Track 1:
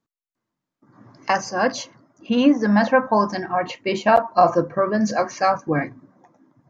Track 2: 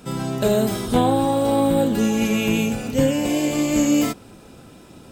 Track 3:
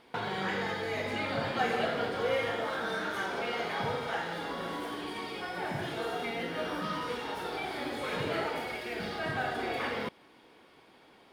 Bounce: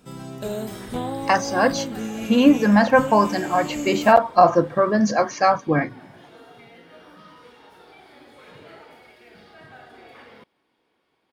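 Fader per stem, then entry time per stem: +1.5 dB, -10.5 dB, -12.5 dB; 0.00 s, 0.00 s, 0.35 s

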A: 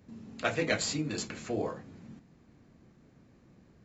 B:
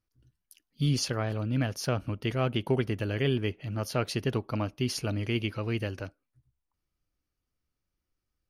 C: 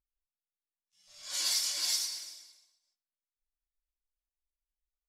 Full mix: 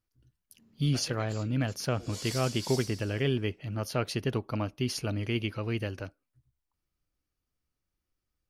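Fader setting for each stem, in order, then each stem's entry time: -16.5 dB, -1.0 dB, -9.0 dB; 0.50 s, 0.00 s, 0.80 s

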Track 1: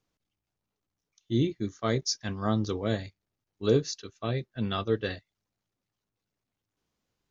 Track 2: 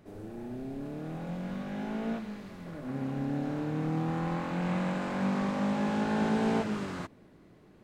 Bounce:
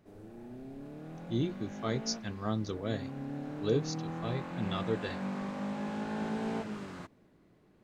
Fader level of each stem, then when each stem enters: -6.0 dB, -7.0 dB; 0.00 s, 0.00 s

